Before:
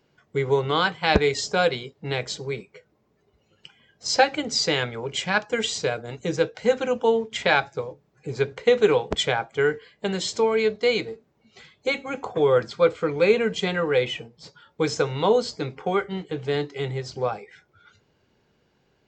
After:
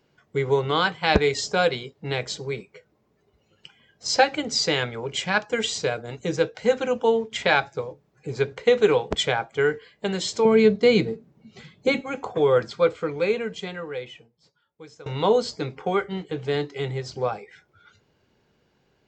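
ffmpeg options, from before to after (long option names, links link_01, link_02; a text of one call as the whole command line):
ffmpeg -i in.wav -filter_complex "[0:a]asettb=1/sr,asplit=3[link_01][link_02][link_03];[link_01]atrim=end=10.454[link_04];[link_02]atrim=start=10.45:end=12.01,asetpts=PTS-STARTPTS,afade=type=in:duration=0.004:curve=qsin,afade=type=out:start_time=1.556:duration=0.004:curve=qsin,equalizer=frequency=170:width_type=o:width=1.9:gain=14[link_05];[link_03]atrim=start=12.006[link_06];[link_04][link_05]acrossfade=duration=0.004:curve1=hsin:curve2=qsin[link_07];[link_07][link_06]acrossfade=duration=0.004:curve1=qsin:curve2=hsin,asplit=2[link_08][link_09];[link_08]atrim=end=15.06,asetpts=PTS-STARTPTS,afade=type=out:start_time=12.68:duration=2.38:curve=qua:silence=0.0841395[link_10];[link_09]atrim=start=15.06,asetpts=PTS-STARTPTS,afade=type=in:duration=0.004:curve=hsin:silence=0.0841395[link_11];[link_10][link_11]concat=n=2:v=0:a=1" out.wav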